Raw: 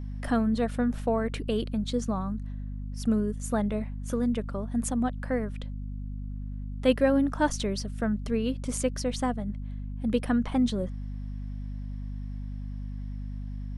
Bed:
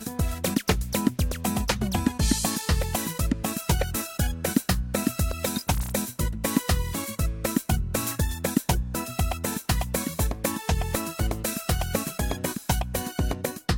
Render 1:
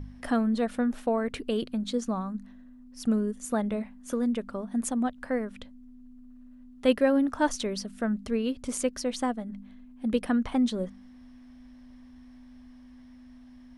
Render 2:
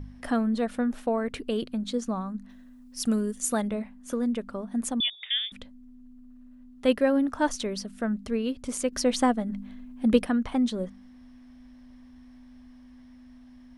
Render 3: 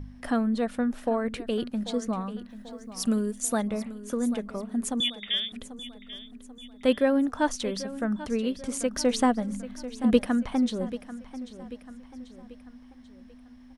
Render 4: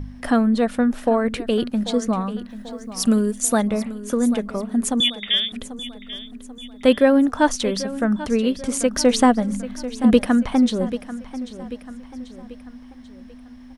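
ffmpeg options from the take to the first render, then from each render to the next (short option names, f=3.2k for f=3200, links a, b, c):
-af "bandreject=f=50:t=h:w=4,bandreject=f=100:t=h:w=4,bandreject=f=150:t=h:w=4,bandreject=f=200:t=h:w=4"
-filter_complex "[0:a]asettb=1/sr,asplit=3[a][b][c];[a]atrim=end=2.494[d];[b]atrim=start=2.49:end=3.68,asetpts=PTS-STARTPTS,afade=t=in:d=0.004:c=qsin,afade=t=out:st=1.186:d=0.004:c=qsin,highshelf=f=2.6k:g=11.5[e];[c]atrim=start=3.676[f];[d][e]acrossfade=d=0.004:c1=hsin:c2=qsin[g];[g][f]acrossfade=d=0.004:c1=qsin:c2=hsin,asettb=1/sr,asplit=3[h][i][j];[h]atrim=end=5.004[k];[i]atrim=start=5:end=5.52,asetpts=PTS-STARTPTS,afade=t=in:d=0.004:c=qsin,afade=t=out:st=0.516:d=0.004:c=qsin,lowpass=f=3.1k:t=q:w=0.5098,lowpass=f=3.1k:t=q:w=0.6013,lowpass=f=3.1k:t=q:w=0.9,lowpass=f=3.1k:t=q:w=2.563,afreqshift=-3700[l];[j]atrim=start=5.516[m];[k][l]acrossfade=d=0.004:c1=hsin:c2=qsin[n];[n][m]acrossfade=d=0.004:c1=qsin:c2=hsin,asettb=1/sr,asplit=3[o][p][q];[o]atrim=end=8.924[r];[p]atrim=start=8.92:end=10.24,asetpts=PTS-STARTPTS,afade=t=in:d=0.004:c=qsin,afade=t=out:st=1.316:d=0.004:c=qsin,acontrast=58[s];[q]atrim=start=10.236[t];[r][s]acrossfade=d=0.004:c1=hsin:c2=qsin[u];[u][t]acrossfade=d=0.004:c1=qsin:c2=hsin"
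-af "aecho=1:1:789|1578|2367|3156:0.188|0.0885|0.0416|0.0196"
-af "volume=8dB,alimiter=limit=-3dB:level=0:latency=1"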